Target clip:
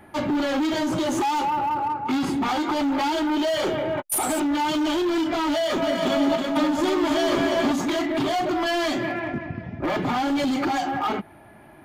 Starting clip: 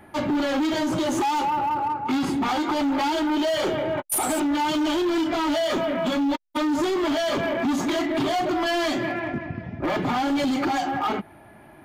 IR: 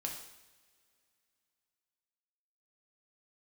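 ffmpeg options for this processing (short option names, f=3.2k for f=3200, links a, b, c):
-filter_complex "[0:a]asettb=1/sr,asplit=3[a][b][c];[a]atrim=end=5.504[d];[b]atrim=start=5.5:end=7.72,asetpts=PTS-STARTPTS,afade=t=in:d=0.004:c=qsin,afade=t=out:st=2.216:d=0.004:c=qsin,aecho=1:1:320|528|663.2|751.1|808.2:0.631|0.398|0.251|0.158|0.1,atrim=end_sample=97902[e];[c]atrim=start=7.716[f];[d][e]acrossfade=d=0.004:c1=hsin:c2=qsin[g];[g][f]acrossfade=d=0.004:c1=qsin:c2=hsin"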